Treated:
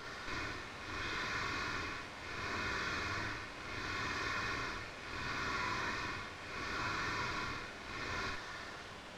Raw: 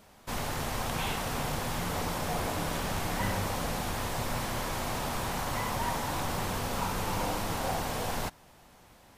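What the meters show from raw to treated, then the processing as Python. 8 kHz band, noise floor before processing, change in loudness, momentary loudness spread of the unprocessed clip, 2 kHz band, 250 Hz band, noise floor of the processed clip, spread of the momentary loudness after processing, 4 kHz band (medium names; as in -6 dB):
-14.0 dB, -57 dBFS, -7.0 dB, 2 LU, -0.5 dB, -11.0 dB, -49 dBFS, 7 LU, -6.0 dB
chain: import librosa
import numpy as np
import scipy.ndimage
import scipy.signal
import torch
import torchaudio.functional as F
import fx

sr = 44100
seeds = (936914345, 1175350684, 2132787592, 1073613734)

p1 = fx.rattle_buzz(x, sr, strikes_db=-39.0, level_db=-21.0)
p2 = scipy.signal.sosfilt(scipy.signal.butter(2, 700.0, 'highpass', fs=sr, output='sos'), p1)
p3 = fx.high_shelf(p2, sr, hz=2400.0, db=9.5)
p4 = p3 + 0.82 * np.pad(p3, (int(2.8 * sr / 1000.0), 0))[:len(p3)]
p5 = fx.over_compress(p4, sr, threshold_db=-34.0, ratio=-0.5)
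p6 = p4 + (p5 * 10.0 ** (-0.5 / 20.0))
p7 = p6 * (1.0 - 0.91 / 2.0 + 0.91 / 2.0 * np.cos(2.0 * np.pi * 0.71 * (np.arange(len(p6)) / sr)))
p8 = fx.tube_stage(p7, sr, drive_db=34.0, bias=0.65)
p9 = fx.fixed_phaser(p8, sr, hz=2800.0, stages=6)
p10 = fx.quant_dither(p9, sr, seeds[0], bits=8, dither='triangular')
p11 = fx.spacing_loss(p10, sr, db_at_10k=31)
p12 = p11 + fx.room_early_taps(p11, sr, ms=(49, 59), db=(-3.5, -5.0), dry=0)
y = p12 * 10.0 ** (7.0 / 20.0)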